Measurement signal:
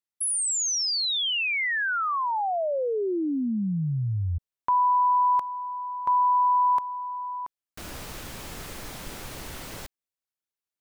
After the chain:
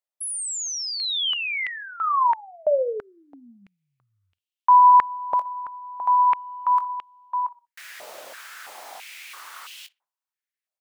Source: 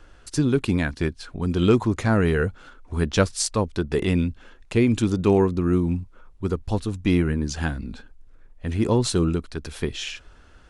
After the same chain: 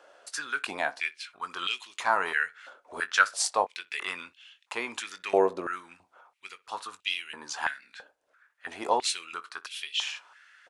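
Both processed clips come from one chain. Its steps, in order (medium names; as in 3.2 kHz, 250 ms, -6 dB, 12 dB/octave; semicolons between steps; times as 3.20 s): doubling 21 ms -12 dB; tape echo 61 ms, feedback 33%, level -19.5 dB, low-pass 1.9 kHz; step-sequenced high-pass 3 Hz 600–2900 Hz; trim -3.5 dB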